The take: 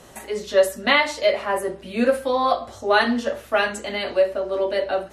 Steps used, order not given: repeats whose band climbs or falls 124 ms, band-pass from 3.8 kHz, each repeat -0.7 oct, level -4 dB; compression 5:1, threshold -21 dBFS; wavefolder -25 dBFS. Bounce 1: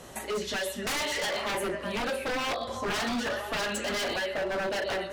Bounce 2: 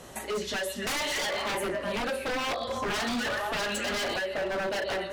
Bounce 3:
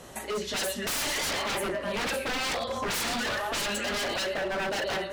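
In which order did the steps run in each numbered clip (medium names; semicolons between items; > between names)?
compression > repeats whose band climbs or falls > wavefolder; repeats whose band climbs or falls > compression > wavefolder; repeats whose band climbs or falls > wavefolder > compression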